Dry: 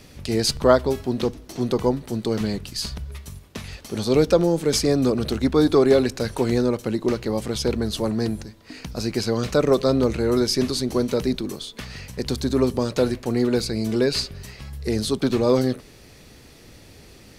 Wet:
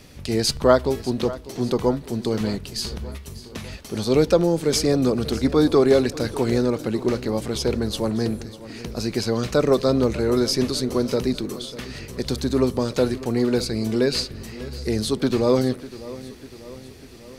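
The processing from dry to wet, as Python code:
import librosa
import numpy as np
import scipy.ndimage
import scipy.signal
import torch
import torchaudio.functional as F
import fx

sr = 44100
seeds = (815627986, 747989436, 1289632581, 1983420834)

y = fx.echo_feedback(x, sr, ms=597, feedback_pct=58, wet_db=-17)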